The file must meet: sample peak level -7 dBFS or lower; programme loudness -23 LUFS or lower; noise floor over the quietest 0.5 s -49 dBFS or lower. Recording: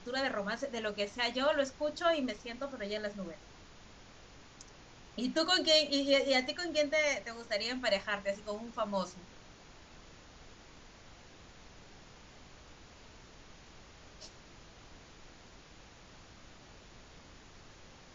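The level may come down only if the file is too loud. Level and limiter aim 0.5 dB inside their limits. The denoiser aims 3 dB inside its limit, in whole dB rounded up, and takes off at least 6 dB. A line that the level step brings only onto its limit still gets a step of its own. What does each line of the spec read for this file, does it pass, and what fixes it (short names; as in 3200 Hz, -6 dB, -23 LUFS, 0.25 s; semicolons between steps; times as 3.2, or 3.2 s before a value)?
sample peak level -15.0 dBFS: OK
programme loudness -32.5 LUFS: OK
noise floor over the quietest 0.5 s -55 dBFS: OK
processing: none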